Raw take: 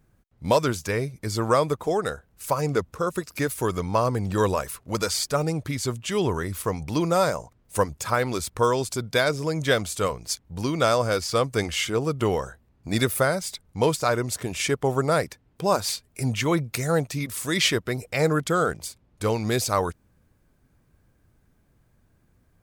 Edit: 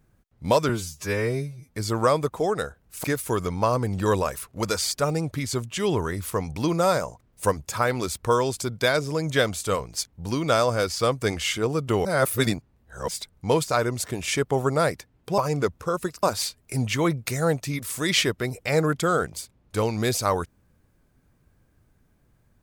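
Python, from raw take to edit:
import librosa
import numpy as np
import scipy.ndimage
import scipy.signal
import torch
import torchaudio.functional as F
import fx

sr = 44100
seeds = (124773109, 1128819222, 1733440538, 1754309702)

y = fx.edit(x, sr, fx.stretch_span(start_s=0.69, length_s=0.53, factor=2.0),
    fx.move(start_s=2.51, length_s=0.85, to_s=15.7),
    fx.reverse_span(start_s=12.37, length_s=1.03), tone=tone)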